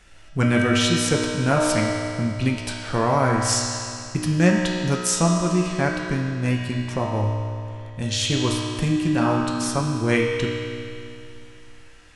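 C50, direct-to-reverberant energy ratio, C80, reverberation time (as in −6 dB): 0.5 dB, −2.5 dB, 1.5 dB, 2.6 s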